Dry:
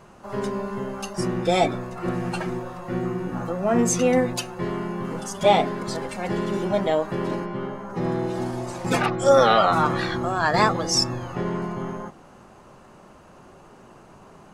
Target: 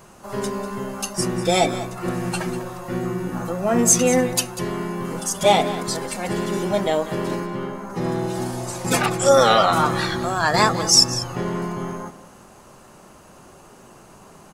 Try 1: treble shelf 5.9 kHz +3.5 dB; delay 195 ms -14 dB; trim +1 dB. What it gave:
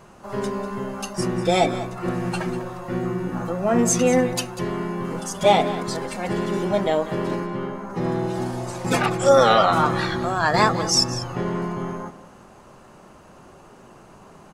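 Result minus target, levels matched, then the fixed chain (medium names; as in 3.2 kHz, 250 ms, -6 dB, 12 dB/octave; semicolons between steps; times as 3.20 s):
8 kHz band -5.5 dB
treble shelf 5.9 kHz +15.5 dB; delay 195 ms -14 dB; trim +1 dB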